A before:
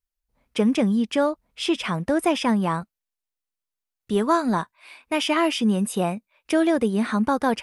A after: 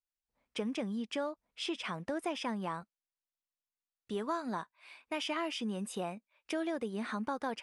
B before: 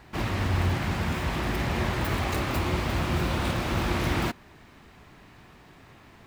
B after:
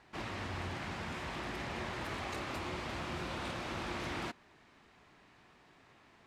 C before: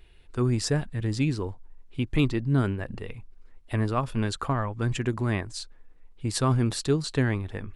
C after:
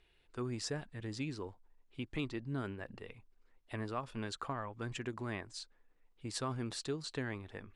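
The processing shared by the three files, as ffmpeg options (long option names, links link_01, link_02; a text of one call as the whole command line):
ffmpeg -i in.wav -af "lowpass=8400,lowshelf=frequency=180:gain=-11,acompressor=threshold=-27dB:ratio=2,volume=-8.5dB" out.wav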